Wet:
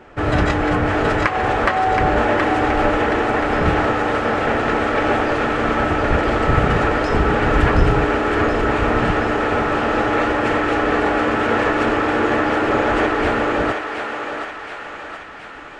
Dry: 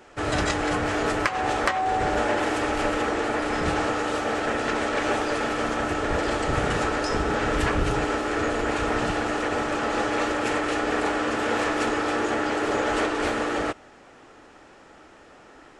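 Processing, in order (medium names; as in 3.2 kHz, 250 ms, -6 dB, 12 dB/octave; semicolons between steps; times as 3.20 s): tone controls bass +5 dB, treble -15 dB; on a send: thinning echo 723 ms, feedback 62%, high-pass 670 Hz, level -4 dB; on the sum: trim +6 dB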